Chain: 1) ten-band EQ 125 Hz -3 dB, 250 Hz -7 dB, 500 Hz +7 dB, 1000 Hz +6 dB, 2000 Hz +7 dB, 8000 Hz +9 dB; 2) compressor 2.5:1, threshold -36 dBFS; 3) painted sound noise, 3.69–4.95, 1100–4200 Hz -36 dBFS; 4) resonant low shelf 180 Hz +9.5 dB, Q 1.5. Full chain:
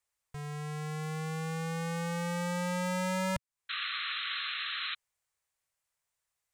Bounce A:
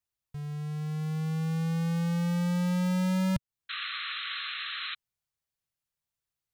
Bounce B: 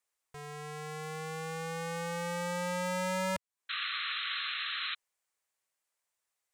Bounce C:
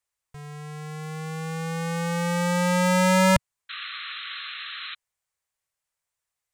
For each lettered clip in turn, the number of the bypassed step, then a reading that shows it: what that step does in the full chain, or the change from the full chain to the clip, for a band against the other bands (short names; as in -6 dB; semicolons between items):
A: 1, 250 Hz band +10.0 dB; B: 4, 125 Hz band -6.5 dB; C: 2, mean gain reduction 6.5 dB